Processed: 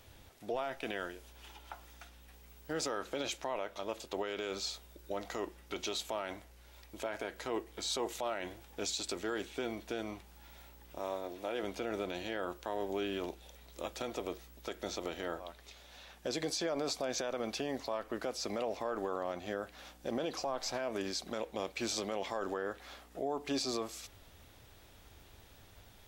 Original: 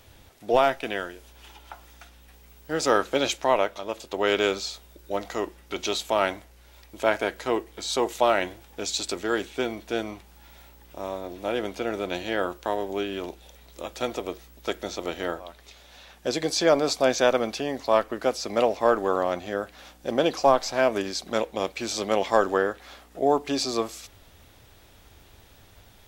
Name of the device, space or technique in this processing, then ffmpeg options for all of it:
stacked limiters: -filter_complex "[0:a]alimiter=limit=-12.5dB:level=0:latency=1:release=83,alimiter=limit=-17dB:level=0:latency=1:release=197,alimiter=limit=-21dB:level=0:latency=1:release=34,asettb=1/sr,asplit=3[a][b][c];[a]atrim=end=10.994[d];[b]atrim=start=10.99:end=11.63,asetpts=PTS-STARTPTS,afade=t=in:d=0.004:c=qsin,afade=t=out:st=0.636:d=0.004:c=qsin,bass=f=250:g=-8,treble=f=4k:g=0[e];[c]atrim=start=11.626[f];[d][e]acrossfade=d=0.004:c1=hsin:c2=qsin[g];[g][f]acrossfade=d=0.004:c1=qsin:c2=hsin,volume=-5dB"

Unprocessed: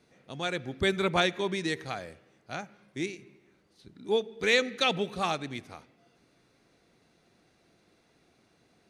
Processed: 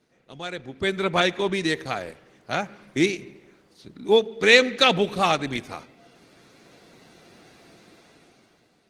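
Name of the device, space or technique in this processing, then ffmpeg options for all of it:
video call: -af "highpass=f=120:p=1,dynaudnorm=f=240:g=9:m=16dB,volume=-1dB" -ar 48000 -c:a libopus -b:a 16k

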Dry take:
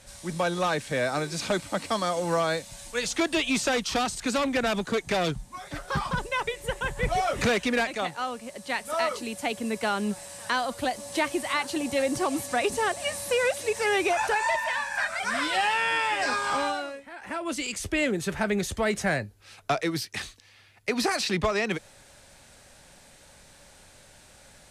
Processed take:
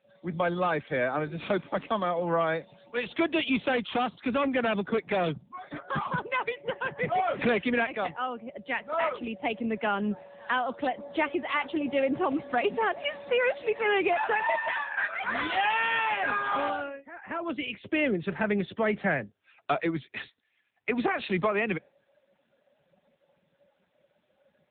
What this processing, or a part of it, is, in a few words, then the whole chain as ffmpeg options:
mobile call with aggressive noise cancelling: -af "highpass=f=140:w=0.5412,highpass=f=140:w=1.3066,afftdn=nr=18:nf=-46" -ar 8000 -c:a libopencore_amrnb -b:a 7950

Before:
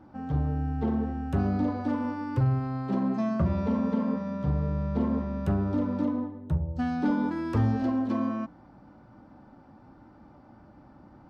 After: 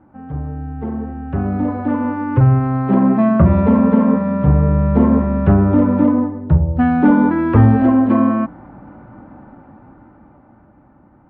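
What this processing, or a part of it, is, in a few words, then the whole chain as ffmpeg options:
action camera in a waterproof case: -af "lowpass=f=2.4k:w=0.5412,lowpass=f=2.4k:w=1.3066,dynaudnorm=f=300:g=13:m=14dB,volume=2dB" -ar 48000 -c:a aac -b:a 64k

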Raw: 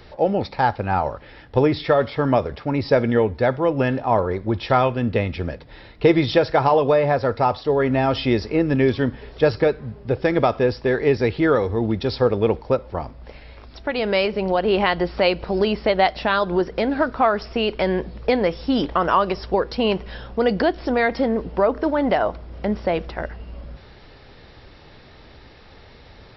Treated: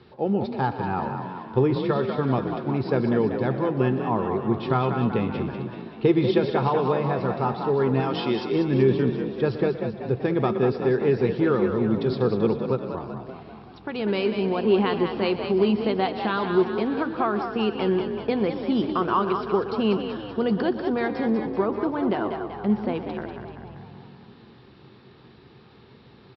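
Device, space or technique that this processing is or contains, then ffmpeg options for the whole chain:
frequency-shifting delay pedal into a guitar cabinet: -filter_complex "[0:a]asettb=1/sr,asplit=3[a][b][c];[a]atrim=end=8.004[d];[b]atrim=start=8:end=8.52,asetpts=PTS-STARTPTS,afade=t=in:d=0.004:c=qsin,afade=t=out:st=0.516:d=0.004:c=qsin,aemphasis=mode=production:type=bsi[e];[c]atrim=start=8.516[f];[d][e]acrossfade=d=0.004:c1=hsin:c2=qsin[g];[g][f]acrossfade=d=0.004:c1=qsin:c2=hsin,aecho=1:1:122:0.188,asplit=9[h][i][j][k][l][m][n][o][p];[i]adelay=192,afreqshift=43,volume=-7dB[q];[j]adelay=384,afreqshift=86,volume=-11.6dB[r];[k]adelay=576,afreqshift=129,volume=-16.2dB[s];[l]adelay=768,afreqshift=172,volume=-20.7dB[t];[m]adelay=960,afreqshift=215,volume=-25.3dB[u];[n]adelay=1152,afreqshift=258,volume=-29.9dB[v];[o]adelay=1344,afreqshift=301,volume=-34.5dB[w];[p]adelay=1536,afreqshift=344,volume=-39.1dB[x];[h][q][r][s][t][u][v][w][x]amix=inputs=9:normalize=0,highpass=100,equalizer=f=130:t=q:w=4:g=8,equalizer=f=210:t=q:w=4:g=9,equalizer=f=380:t=q:w=4:g=8,equalizer=f=600:t=q:w=4:g=-8,equalizer=f=1.1k:t=q:w=4:g=3,equalizer=f=2k:t=q:w=4:g=-6,lowpass=f=4.4k:w=0.5412,lowpass=f=4.4k:w=1.3066,volume=-7dB"

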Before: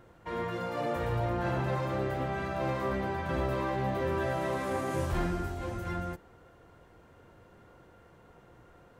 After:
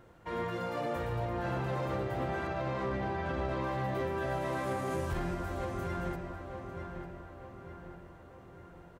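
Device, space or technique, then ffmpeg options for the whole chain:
limiter into clipper: -filter_complex "[0:a]asettb=1/sr,asplit=3[a][b][c];[a]atrim=end=2.474[d];[b]atrim=start=2.47:end=3.64,asetpts=PTS-STARTPTS,afade=t=in:d=0.004:c=qsin,afade=t=out:st=1.166:d=0.004:c=qsin,lowpass=6.2k[e];[c]atrim=start=3.636[f];[d][e]acrossfade=d=0.004:c1=hsin:c2=qsin[g];[g][f]acrossfade=d=0.004:c1=qsin:c2=hsin,asplit=2[h][i];[i]adelay=899,lowpass=f=3.3k:p=1,volume=-8.5dB,asplit=2[j][k];[k]adelay=899,lowpass=f=3.3k:p=1,volume=0.52,asplit=2[l][m];[m]adelay=899,lowpass=f=3.3k:p=1,volume=0.52,asplit=2[n][o];[o]adelay=899,lowpass=f=3.3k:p=1,volume=0.52,asplit=2[p][q];[q]adelay=899,lowpass=f=3.3k:p=1,volume=0.52,asplit=2[r][s];[s]adelay=899,lowpass=f=3.3k:p=1,volume=0.52[t];[h][j][l][n][p][r][t]amix=inputs=7:normalize=0,alimiter=limit=-24dB:level=0:latency=1:release=165,asoftclip=type=hard:threshold=-25.5dB,volume=-1dB"

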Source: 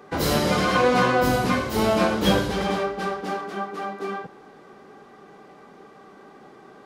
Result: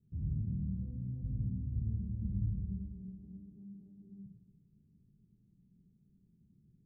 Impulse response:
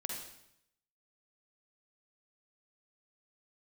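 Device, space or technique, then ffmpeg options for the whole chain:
club heard from the street: -filter_complex "[0:a]alimiter=limit=-15dB:level=0:latency=1:release=14,lowpass=f=130:w=0.5412,lowpass=f=130:w=1.3066[a];[1:a]atrim=start_sample=2205[b];[a][b]afir=irnorm=-1:irlink=0"

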